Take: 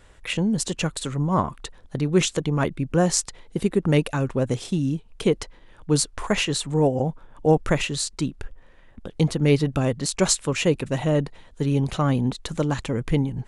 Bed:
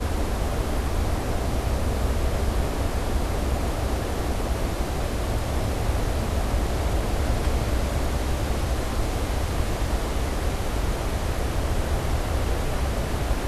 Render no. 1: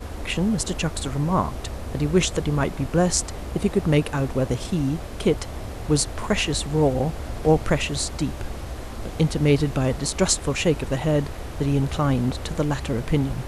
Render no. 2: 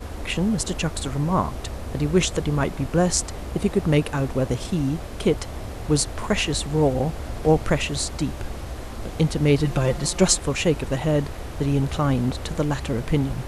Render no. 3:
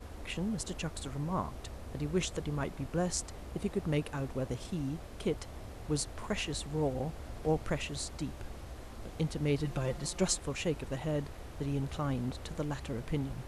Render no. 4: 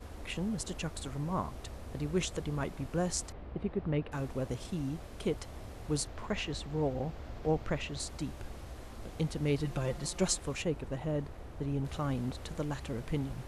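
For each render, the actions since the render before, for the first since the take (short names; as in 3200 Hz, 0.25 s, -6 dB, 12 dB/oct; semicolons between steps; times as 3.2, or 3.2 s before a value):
add bed -8 dB
9.64–10.38 comb 5.7 ms
gain -12.5 dB
3.32–4.12 air absorption 370 m; 6.07–8 bell 9900 Hz -13.5 dB 0.86 oct; 10.62–11.85 high shelf 2200 Hz -8.5 dB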